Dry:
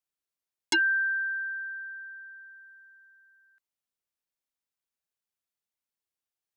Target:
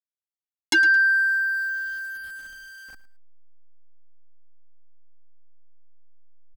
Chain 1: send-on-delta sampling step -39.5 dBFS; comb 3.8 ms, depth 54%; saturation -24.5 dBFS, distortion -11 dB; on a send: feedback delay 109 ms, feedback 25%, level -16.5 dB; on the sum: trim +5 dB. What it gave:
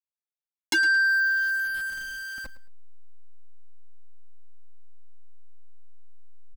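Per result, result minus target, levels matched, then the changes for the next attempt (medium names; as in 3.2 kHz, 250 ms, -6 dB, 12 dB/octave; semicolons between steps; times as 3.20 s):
saturation: distortion +10 dB; send-on-delta sampling: distortion +8 dB
change: saturation -17 dBFS, distortion -21 dB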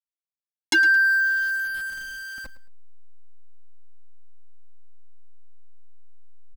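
send-on-delta sampling: distortion +8 dB
change: send-on-delta sampling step -47 dBFS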